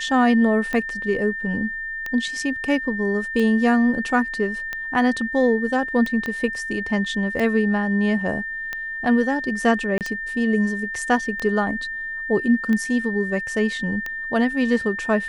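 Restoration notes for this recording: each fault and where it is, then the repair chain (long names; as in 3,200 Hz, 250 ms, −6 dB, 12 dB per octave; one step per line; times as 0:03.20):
scratch tick 45 rpm −14 dBFS
whistle 1,800 Hz −27 dBFS
0:06.26: click −15 dBFS
0:09.98–0:10.01: drop-out 28 ms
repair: click removal
notch filter 1,800 Hz, Q 30
repair the gap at 0:09.98, 28 ms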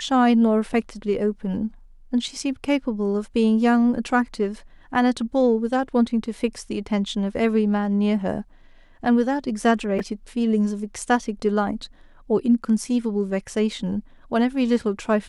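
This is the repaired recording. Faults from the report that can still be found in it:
0:06.26: click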